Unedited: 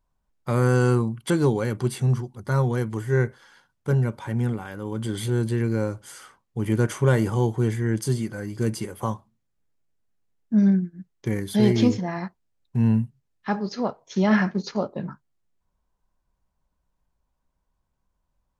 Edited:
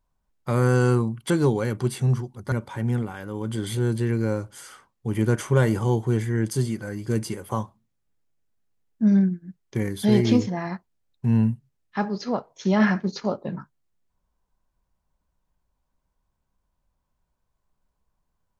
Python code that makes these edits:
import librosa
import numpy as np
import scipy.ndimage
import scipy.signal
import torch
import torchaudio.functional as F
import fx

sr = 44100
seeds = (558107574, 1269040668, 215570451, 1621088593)

y = fx.edit(x, sr, fx.cut(start_s=2.52, length_s=1.51), tone=tone)